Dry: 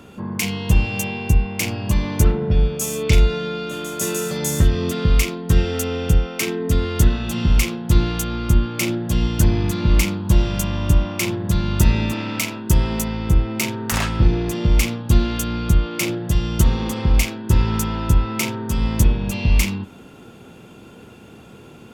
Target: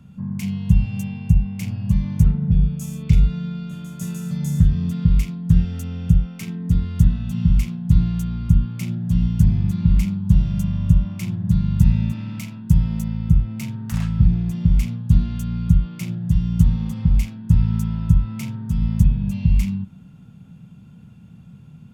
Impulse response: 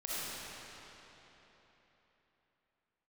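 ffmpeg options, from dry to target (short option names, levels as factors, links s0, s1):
-af "lowshelf=f=250:t=q:w=3:g=13.5,volume=0.178"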